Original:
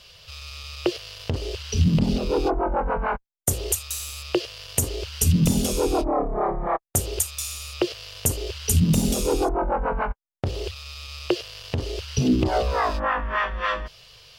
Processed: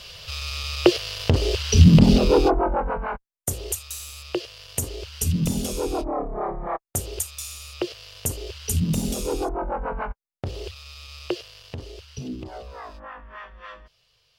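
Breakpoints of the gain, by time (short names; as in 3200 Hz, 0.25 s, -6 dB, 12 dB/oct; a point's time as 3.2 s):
2.24 s +7.5 dB
3.07 s -4 dB
11.27 s -4 dB
12.58 s -16 dB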